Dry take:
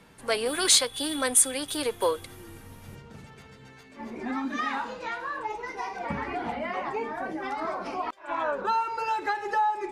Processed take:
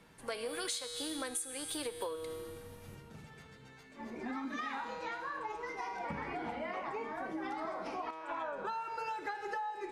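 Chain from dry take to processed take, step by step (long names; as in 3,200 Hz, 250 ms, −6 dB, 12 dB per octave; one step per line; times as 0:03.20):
tuned comb filter 160 Hz, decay 1.7 s, mix 80%
downward compressor 16 to 1, threshold −42 dBFS, peak gain reduction 15 dB
level +7 dB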